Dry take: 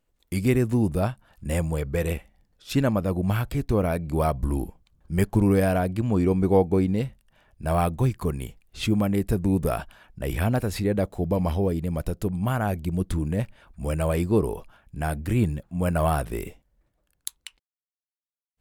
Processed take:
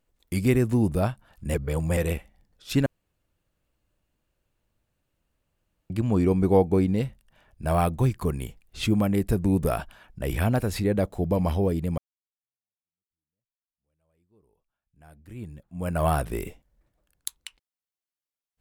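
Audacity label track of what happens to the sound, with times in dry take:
1.540000	1.970000	reverse
2.860000	5.900000	room tone
11.980000	16.080000	fade in exponential

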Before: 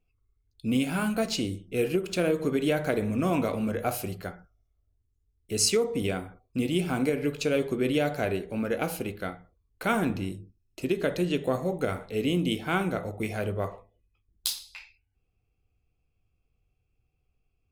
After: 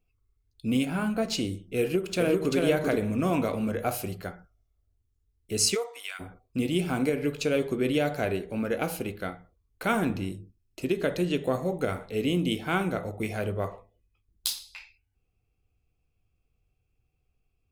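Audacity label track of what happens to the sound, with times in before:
0.850000	1.300000	high shelf 2700 Hz -9 dB
1.810000	2.560000	echo throw 0.39 s, feedback 15%, level -2.5 dB
5.740000	6.190000	HPF 450 Hz -> 1400 Hz 24 dB/oct

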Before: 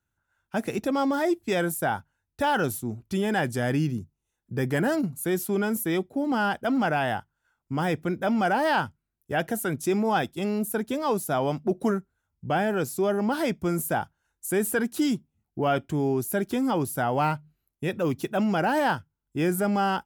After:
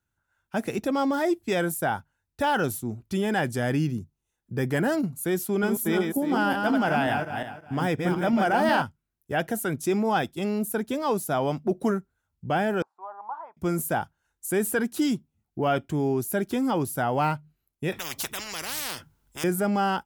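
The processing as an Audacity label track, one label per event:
5.450000	8.820000	regenerating reverse delay 0.18 s, feedback 43%, level -4 dB
12.820000	13.570000	Butterworth band-pass 960 Hz, Q 3
17.920000	19.440000	spectral compressor 10:1

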